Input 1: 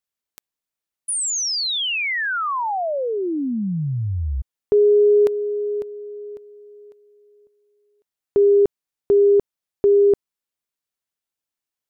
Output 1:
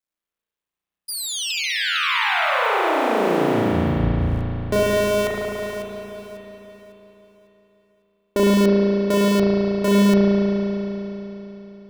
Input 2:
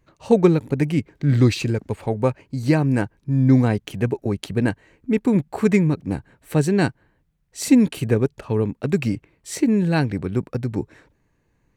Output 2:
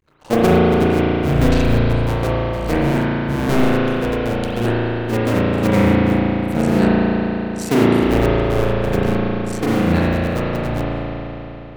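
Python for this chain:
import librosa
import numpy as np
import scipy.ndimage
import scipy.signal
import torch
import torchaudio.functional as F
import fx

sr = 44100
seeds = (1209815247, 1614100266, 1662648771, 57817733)

y = fx.cycle_switch(x, sr, every=2, mode='muted')
y = fx.rev_spring(y, sr, rt60_s=3.6, pass_ms=(35,), chirp_ms=75, drr_db=-8.0)
y = y * 10.0 ** (-2.0 / 20.0)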